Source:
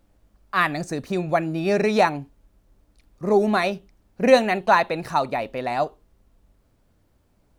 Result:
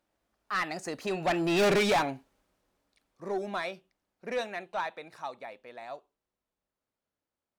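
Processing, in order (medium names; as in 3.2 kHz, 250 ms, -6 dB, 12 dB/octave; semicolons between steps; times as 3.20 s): Doppler pass-by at 1.66 s, 17 m/s, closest 1.9 m; overdrive pedal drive 28 dB, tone 7.4 kHz, clips at -12 dBFS; trim -6 dB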